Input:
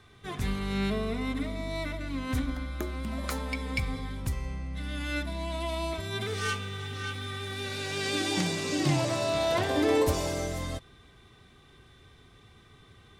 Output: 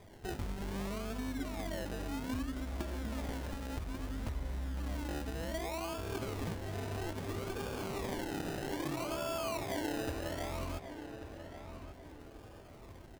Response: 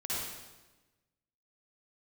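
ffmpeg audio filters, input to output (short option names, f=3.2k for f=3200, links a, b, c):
-filter_complex "[0:a]bandreject=f=60:t=h:w=6,bandreject=f=120:t=h:w=6,bandreject=f=180:t=h:w=6,bandreject=f=240:t=h:w=6,bandreject=f=300:t=h:w=6,bandreject=f=360:t=h:w=6,aecho=1:1:3.2:0.49,acompressor=threshold=-37dB:ratio=6,acrusher=samples=31:mix=1:aa=0.000001:lfo=1:lforange=18.6:lforate=0.62,asplit=2[a][b];[b]adelay=1138,lowpass=f=2.7k:p=1,volume=-9.5dB,asplit=2[c][d];[d]adelay=1138,lowpass=f=2.7k:p=1,volume=0.36,asplit=2[e][f];[f]adelay=1138,lowpass=f=2.7k:p=1,volume=0.36,asplit=2[g][h];[h]adelay=1138,lowpass=f=2.7k:p=1,volume=0.36[i];[c][e][g][i]amix=inputs=4:normalize=0[j];[a][j]amix=inputs=2:normalize=0,volume=1dB"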